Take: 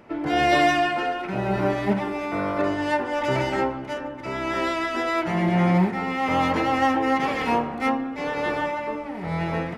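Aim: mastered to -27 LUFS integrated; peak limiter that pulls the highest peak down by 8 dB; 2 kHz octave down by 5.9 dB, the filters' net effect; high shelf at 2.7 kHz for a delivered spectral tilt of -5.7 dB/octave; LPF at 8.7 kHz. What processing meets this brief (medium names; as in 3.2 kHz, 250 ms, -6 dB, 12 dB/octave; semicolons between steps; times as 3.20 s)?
low-pass 8.7 kHz; peaking EQ 2 kHz -4 dB; treble shelf 2.7 kHz -7.5 dB; trim -0.5 dB; peak limiter -17 dBFS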